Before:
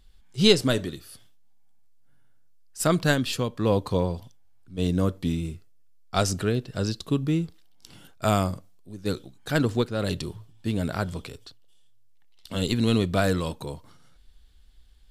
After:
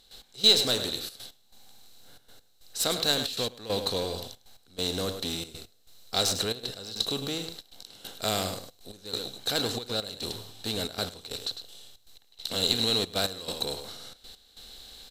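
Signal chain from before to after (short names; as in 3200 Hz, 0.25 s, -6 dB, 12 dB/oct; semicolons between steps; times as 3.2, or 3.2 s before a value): per-bin compression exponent 0.6; in parallel at -5.5 dB: overloaded stage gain 20.5 dB; on the sum: pre-emphasis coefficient 0.8; echo 0.103 s -9.5 dB; step gate ".x..xxxxxx" 138 bpm -12 dB; thirty-one-band EQ 160 Hz -8 dB, 500 Hz +6 dB, 800 Hz +8 dB, 4000 Hz +11 dB, 10000 Hz -8 dB; gain -2 dB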